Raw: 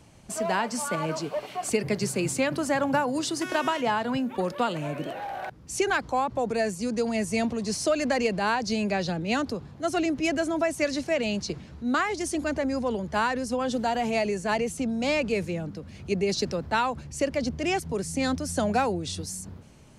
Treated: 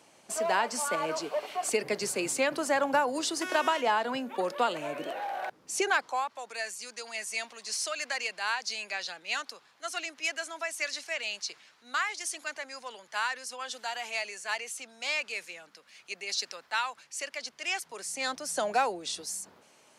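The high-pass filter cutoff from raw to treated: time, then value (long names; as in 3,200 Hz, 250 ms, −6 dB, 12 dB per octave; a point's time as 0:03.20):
0:05.76 410 Hz
0:06.36 1,400 Hz
0:17.62 1,400 Hz
0:18.59 570 Hz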